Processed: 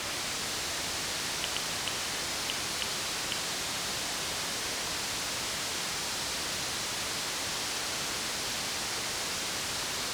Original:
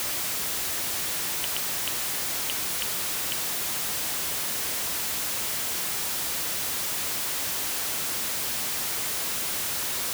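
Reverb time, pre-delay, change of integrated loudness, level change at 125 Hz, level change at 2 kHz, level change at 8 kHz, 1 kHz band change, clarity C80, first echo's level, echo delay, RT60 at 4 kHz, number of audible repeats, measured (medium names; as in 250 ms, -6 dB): 2.9 s, 30 ms, -5.0 dB, +0.5 dB, -0.5 dB, -4.5 dB, 0.0 dB, 13.0 dB, no echo, no echo, 2.7 s, no echo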